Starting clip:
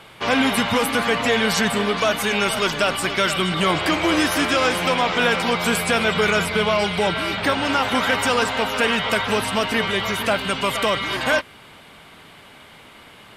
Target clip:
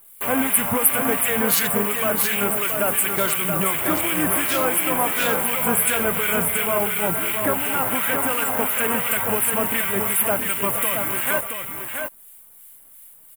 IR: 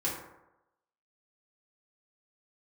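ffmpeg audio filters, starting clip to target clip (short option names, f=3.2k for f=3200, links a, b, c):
-filter_complex "[0:a]afwtdn=0.0562,highshelf=f=8.7k:g=11.5,asplit=2[a][b];[b]acompressor=threshold=-33dB:ratio=6,volume=-1.5dB[c];[a][c]amix=inputs=2:normalize=0,acrossover=split=1500[d][e];[d]aeval=exprs='val(0)*(1-0.7/2+0.7/2*cos(2*PI*2.8*n/s))':c=same[f];[e]aeval=exprs='val(0)*(1-0.7/2-0.7/2*cos(2*PI*2.8*n/s))':c=same[g];[f][g]amix=inputs=2:normalize=0,acrusher=bits=8:dc=4:mix=0:aa=0.000001,aexciter=amount=11.7:drive=8.5:freq=8.2k,asplit=2[h][i];[i]aecho=0:1:675:0.501[j];[h][j]amix=inputs=2:normalize=0,volume=-2.5dB"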